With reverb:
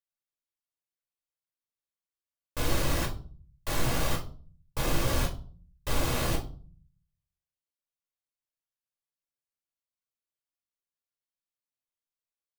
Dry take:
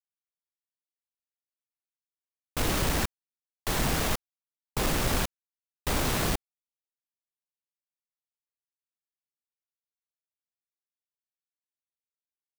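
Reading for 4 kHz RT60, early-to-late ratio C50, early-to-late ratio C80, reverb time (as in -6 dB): 0.30 s, 11.5 dB, 17.0 dB, 0.45 s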